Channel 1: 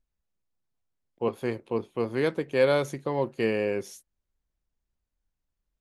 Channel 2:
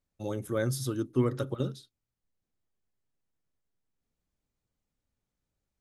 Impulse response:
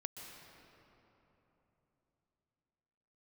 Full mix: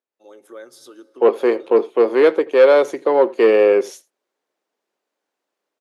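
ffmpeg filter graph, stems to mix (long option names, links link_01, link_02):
-filter_complex "[0:a]tiltshelf=frequency=790:gain=4.5,asoftclip=type=tanh:threshold=-15dB,volume=2.5dB,asplit=3[link_01][link_02][link_03];[link_02]volume=-22.5dB[link_04];[1:a]acompressor=threshold=-30dB:ratio=6,volume=-16dB,asplit=2[link_05][link_06];[link_06]volume=-12dB[link_07];[link_03]apad=whole_len=256114[link_08];[link_05][link_08]sidechaincompress=threshold=-33dB:ratio=8:attack=16:release=167[link_09];[2:a]atrim=start_sample=2205[link_10];[link_07][link_10]afir=irnorm=-1:irlink=0[link_11];[link_04]aecho=0:1:83:1[link_12];[link_01][link_09][link_11][link_12]amix=inputs=4:normalize=0,highpass=frequency=370:width=0.5412,highpass=frequency=370:width=1.3066,highshelf=frequency=7700:gain=-11,dynaudnorm=framelen=120:gausssize=5:maxgain=14dB"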